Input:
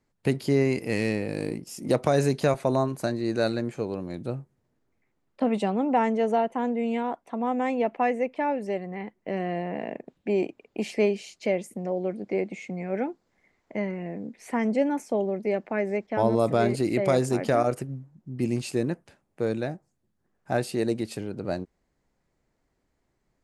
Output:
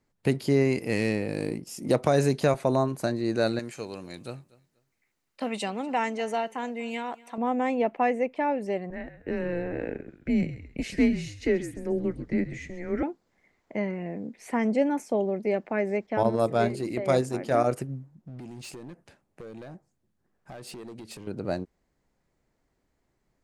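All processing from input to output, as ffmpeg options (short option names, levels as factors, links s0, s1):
-filter_complex "[0:a]asettb=1/sr,asplit=3[s0][s1][s2];[s0]atrim=end=3.594[s3];[s1]atrim=start=3.59:end=7.38,asetpts=PTS-STARTPTS,afade=t=in:d=0.004:c=qsin,afade=t=out:st=3.786:d=0.004:c=qsin,tiltshelf=f=1400:g=-8.5,bandreject=f=3400:w=18,aecho=1:1:242|484:0.0794|0.0191,atrim=end_sample=167139[s4];[s2]atrim=start=7.376[s5];[s3][s4]acrossfade=d=0.004:c1=hsin:c2=qsin[s6];[s6][s5]acrossfade=d=0.004:c1=qsin:c2=hsin,asettb=1/sr,asplit=3[s7][s8][s9];[s7]atrim=end=8.904[s10];[s8]atrim=start=8.9:end=13.03,asetpts=PTS-STARTPTS,afade=t=in:d=0.004:c=qsin,afade=t=out:st=4.126:d=0.004:c=qsin,lowshelf=f=310:t=q:w=1.5:g=-7.5,asplit=4[s11][s12][s13][s14];[s12]adelay=133,afreqshift=-69,volume=0.224[s15];[s13]adelay=266,afreqshift=-138,volume=0.0716[s16];[s14]adelay=399,afreqshift=-207,volume=0.0229[s17];[s11][s15][s16][s17]amix=inputs=4:normalize=0,atrim=end_sample=182133,afreqshift=-170[s18];[s9]atrim=start=13.026[s19];[s10][s18]acrossfade=d=0.004:c1=hsin:c2=qsin[s20];[s20][s19]acrossfade=d=0.004:c1=qsin:c2=hsin,asettb=1/sr,asplit=3[s21][s22][s23];[s21]atrim=end=16.234[s24];[s22]atrim=start=16.23:end=17.55,asetpts=PTS-STARTPTS,afade=t=in:d=0.004:c=qsin,afade=t=out:st=1.316:d=0.004:c=qsin,agate=range=0.501:threshold=0.0708:ratio=16:release=100:detection=peak,bandreject=f=50:t=h:w=6,bandreject=f=100:t=h:w=6,bandreject=f=150:t=h:w=6,bandreject=f=200:t=h:w=6,bandreject=f=250:t=h:w=6,bandreject=f=300:t=h:w=6,bandreject=f=350:t=h:w=6,bandreject=f=400:t=h:w=6,bandreject=f=450:t=h:w=6[s25];[s23]atrim=start=17.546[s26];[s24][s25]acrossfade=d=0.004:c1=hsin:c2=qsin[s27];[s27][s26]acrossfade=d=0.004:c1=qsin:c2=hsin,asettb=1/sr,asplit=3[s28][s29][s30];[s28]atrim=end=18.154[s31];[s29]atrim=start=18.15:end=21.27,asetpts=PTS-STARTPTS,afade=t=in:d=0.004:c=qsin,afade=t=out:st=3.116:d=0.004:c=qsin,highshelf=f=11000:g=-3,acompressor=threshold=0.0178:ratio=8:attack=3.2:release=140:knee=1:detection=peak,asoftclip=type=hard:threshold=0.0133[s32];[s30]atrim=start=21.266[s33];[s31][s32]acrossfade=d=0.004:c1=hsin:c2=qsin[s34];[s34][s33]acrossfade=d=0.004:c1=qsin:c2=hsin"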